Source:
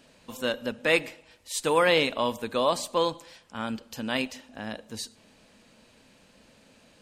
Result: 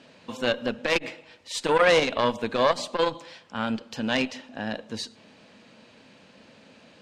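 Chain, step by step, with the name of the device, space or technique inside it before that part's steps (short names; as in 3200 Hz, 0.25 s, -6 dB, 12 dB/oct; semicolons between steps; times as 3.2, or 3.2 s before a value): valve radio (BPF 110–4800 Hz; tube stage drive 17 dB, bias 0.6; core saturation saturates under 640 Hz); gain +8.5 dB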